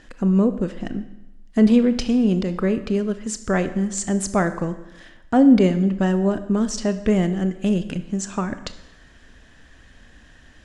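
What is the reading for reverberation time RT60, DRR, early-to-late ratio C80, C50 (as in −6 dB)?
0.95 s, 10.5 dB, 15.0 dB, 13.0 dB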